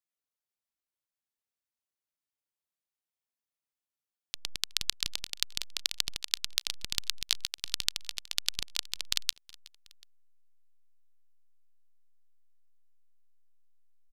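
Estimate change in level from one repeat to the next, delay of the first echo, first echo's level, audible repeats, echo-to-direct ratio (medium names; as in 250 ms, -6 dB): -4.5 dB, 369 ms, -24.0 dB, 2, -22.5 dB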